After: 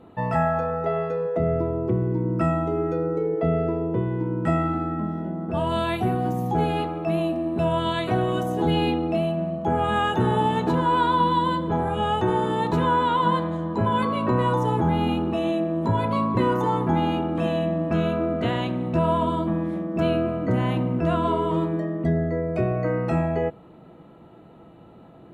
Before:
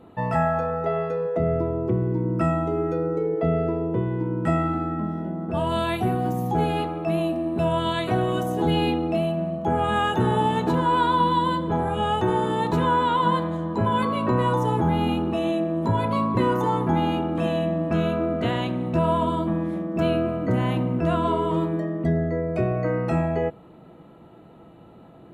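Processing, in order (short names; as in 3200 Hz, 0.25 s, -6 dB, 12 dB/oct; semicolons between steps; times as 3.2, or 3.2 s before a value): high shelf 8500 Hz -5.5 dB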